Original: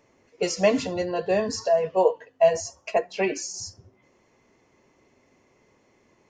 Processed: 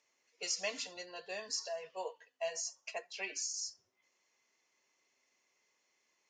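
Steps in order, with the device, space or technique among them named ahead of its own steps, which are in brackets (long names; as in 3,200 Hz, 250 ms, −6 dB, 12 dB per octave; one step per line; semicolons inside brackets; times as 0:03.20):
piezo pickup straight into a mixer (low-pass filter 6,200 Hz 12 dB per octave; first difference)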